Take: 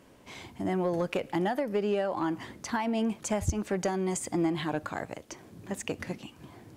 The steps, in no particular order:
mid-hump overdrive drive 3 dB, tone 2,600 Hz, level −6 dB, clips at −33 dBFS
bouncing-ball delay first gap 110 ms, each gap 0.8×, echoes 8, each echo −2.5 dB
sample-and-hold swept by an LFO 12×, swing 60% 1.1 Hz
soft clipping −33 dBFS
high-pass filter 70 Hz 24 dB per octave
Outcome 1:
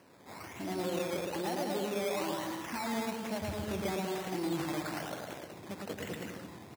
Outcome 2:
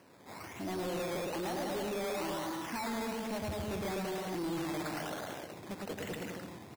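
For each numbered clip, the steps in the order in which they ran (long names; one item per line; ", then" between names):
mid-hump overdrive, then soft clipping, then bouncing-ball delay, then sample-and-hold swept by an LFO, then high-pass filter
bouncing-ball delay, then mid-hump overdrive, then sample-and-hold swept by an LFO, then high-pass filter, then soft clipping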